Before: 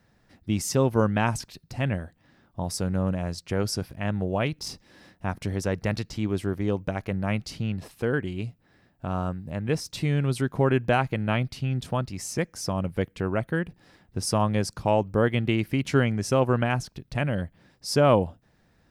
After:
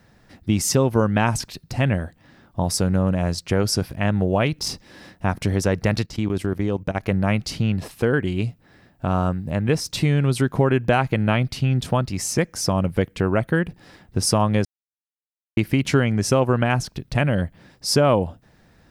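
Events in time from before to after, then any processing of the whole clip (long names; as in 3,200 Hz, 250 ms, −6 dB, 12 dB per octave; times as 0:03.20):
0:06.06–0:07.04: output level in coarse steps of 15 dB
0:14.65–0:15.57: silence
whole clip: downward compressor 2.5 to 1, threshold −24 dBFS; level +8.5 dB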